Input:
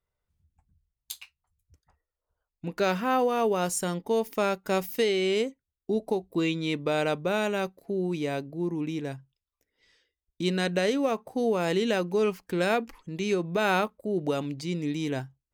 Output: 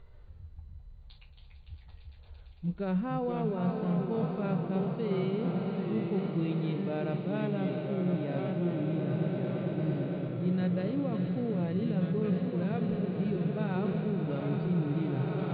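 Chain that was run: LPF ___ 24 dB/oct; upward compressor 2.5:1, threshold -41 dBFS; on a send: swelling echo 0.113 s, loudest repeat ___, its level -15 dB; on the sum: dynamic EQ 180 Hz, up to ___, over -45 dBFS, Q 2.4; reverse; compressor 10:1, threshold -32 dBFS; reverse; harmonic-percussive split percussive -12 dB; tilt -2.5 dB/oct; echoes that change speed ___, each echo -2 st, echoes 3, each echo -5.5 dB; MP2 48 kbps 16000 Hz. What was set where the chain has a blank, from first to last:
6200 Hz, 8, +7 dB, 0.139 s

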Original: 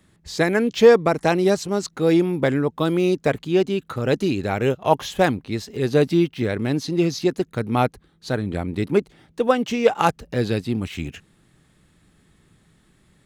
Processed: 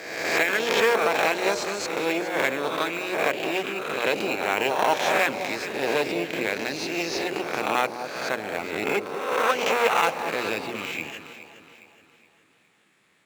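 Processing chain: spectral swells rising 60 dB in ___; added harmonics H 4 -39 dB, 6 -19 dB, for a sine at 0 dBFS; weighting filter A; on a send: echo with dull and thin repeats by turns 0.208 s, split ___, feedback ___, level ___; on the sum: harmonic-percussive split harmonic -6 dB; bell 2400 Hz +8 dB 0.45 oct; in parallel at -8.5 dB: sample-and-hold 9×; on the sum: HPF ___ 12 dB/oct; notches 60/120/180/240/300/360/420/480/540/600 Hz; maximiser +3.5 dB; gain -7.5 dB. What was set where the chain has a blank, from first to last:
1.27 s, 1000 Hz, 64%, -9 dB, 65 Hz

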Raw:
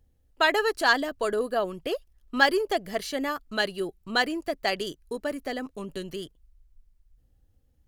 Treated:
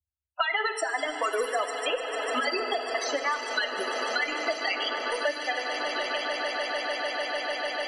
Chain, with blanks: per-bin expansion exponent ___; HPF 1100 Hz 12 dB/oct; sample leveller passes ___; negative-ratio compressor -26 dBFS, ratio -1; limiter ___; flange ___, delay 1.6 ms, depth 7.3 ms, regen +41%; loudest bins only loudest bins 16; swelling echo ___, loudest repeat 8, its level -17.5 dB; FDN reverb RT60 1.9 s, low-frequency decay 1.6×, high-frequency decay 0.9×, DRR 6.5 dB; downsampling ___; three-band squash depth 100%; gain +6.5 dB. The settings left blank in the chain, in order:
1.5, 3, -17.5 dBFS, 0.59 Hz, 0.149 s, 22050 Hz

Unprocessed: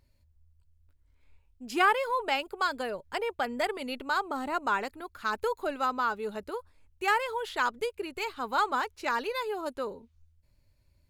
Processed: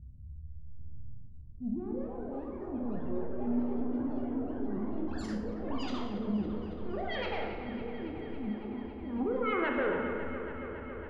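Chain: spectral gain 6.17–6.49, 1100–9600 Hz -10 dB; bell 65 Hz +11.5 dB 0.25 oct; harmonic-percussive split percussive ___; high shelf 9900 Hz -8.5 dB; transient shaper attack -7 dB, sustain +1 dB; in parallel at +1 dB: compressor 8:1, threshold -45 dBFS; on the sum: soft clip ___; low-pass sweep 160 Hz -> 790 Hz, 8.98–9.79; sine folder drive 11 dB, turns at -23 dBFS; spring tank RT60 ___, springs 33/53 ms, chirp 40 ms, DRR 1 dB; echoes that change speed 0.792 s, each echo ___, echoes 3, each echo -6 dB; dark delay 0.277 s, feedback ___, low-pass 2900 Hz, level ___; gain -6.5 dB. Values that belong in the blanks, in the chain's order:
-10 dB, -31 dBFS, 1.7 s, +7 st, 80%, -10 dB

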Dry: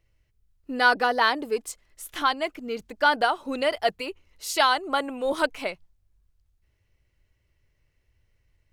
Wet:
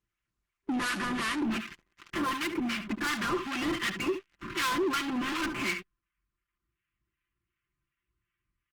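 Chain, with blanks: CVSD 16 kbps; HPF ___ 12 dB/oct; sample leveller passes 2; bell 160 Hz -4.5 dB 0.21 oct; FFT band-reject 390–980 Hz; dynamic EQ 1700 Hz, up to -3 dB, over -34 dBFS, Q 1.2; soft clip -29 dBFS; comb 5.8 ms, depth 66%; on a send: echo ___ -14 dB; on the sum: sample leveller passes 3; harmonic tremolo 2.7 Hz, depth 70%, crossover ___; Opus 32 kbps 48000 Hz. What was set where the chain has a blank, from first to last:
55 Hz, 71 ms, 1100 Hz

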